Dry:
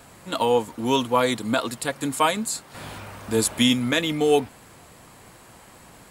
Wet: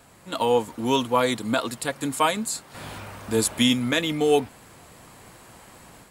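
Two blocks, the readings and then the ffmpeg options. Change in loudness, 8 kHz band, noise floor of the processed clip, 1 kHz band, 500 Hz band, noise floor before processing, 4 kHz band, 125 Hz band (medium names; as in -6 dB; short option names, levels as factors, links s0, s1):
-0.5 dB, -1.0 dB, -52 dBFS, -1.0 dB, -0.5 dB, -49 dBFS, -1.0 dB, -1.0 dB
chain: -af "dynaudnorm=f=250:g=3:m=1.88,volume=0.562"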